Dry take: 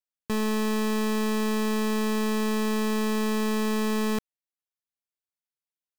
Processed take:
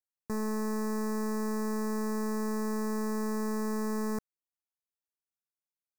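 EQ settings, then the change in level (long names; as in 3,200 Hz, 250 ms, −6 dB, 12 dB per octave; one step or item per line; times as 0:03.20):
Butterworth band-reject 3,100 Hz, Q 0.88
−6.0 dB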